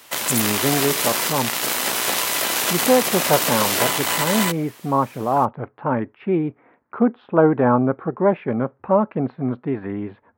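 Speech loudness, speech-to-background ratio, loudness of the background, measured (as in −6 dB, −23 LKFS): −22.0 LKFS, −2.0 dB, −20.0 LKFS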